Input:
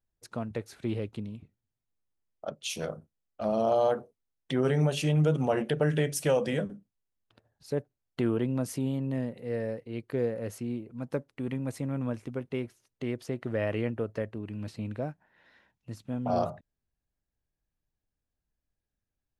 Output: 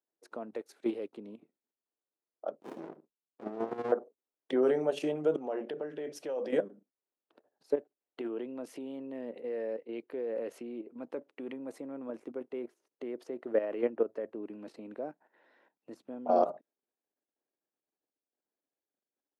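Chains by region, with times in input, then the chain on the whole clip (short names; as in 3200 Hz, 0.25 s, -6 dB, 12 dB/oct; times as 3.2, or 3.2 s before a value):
0.55–1.13 high shelf 2500 Hz +9.5 dB + upward expander, over -49 dBFS
2.6–3.92 LPF 11000 Hz + bell 970 Hz -5 dB 1.6 oct + running maximum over 65 samples
5.36–6.5 resonant high shelf 6600 Hz -6.5 dB, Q 1.5 + compressor 2:1, threshold -32 dBFS
7.74–11.53 bell 2800 Hz +8 dB 1.2 oct + compressor 1.5:1, threshold -33 dBFS + mismatched tape noise reduction decoder only
whole clip: tilt shelf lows +8.5 dB, about 1400 Hz; level quantiser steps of 11 dB; HPF 310 Hz 24 dB/oct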